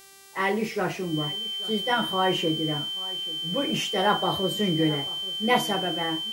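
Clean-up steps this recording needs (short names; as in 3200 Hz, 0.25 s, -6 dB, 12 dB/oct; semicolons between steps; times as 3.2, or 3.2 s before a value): de-hum 391.1 Hz, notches 32; notch 3100 Hz, Q 30; inverse comb 0.834 s -19.5 dB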